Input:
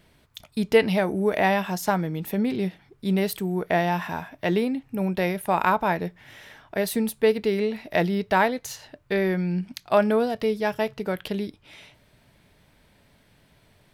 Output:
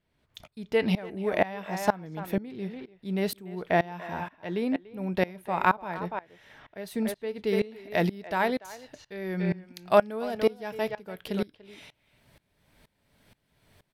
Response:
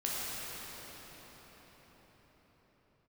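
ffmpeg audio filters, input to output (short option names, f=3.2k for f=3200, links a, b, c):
-filter_complex "[0:a]asetnsamples=n=441:p=0,asendcmd='7.47 highshelf g 3',highshelf=f=6.8k:g=-8.5,asplit=2[a][b];[b]adelay=290,highpass=300,lowpass=3.4k,asoftclip=type=hard:threshold=-11dB,volume=-9dB[c];[a][c]amix=inputs=2:normalize=0,aeval=exprs='val(0)*pow(10,-22*if(lt(mod(-2.1*n/s,1),2*abs(-2.1)/1000),1-mod(-2.1*n/s,1)/(2*abs(-2.1)/1000),(mod(-2.1*n/s,1)-2*abs(-2.1)/1000)/(1-2*abs(-2.1)/1000))/20)':c=same,volume=1.5dB"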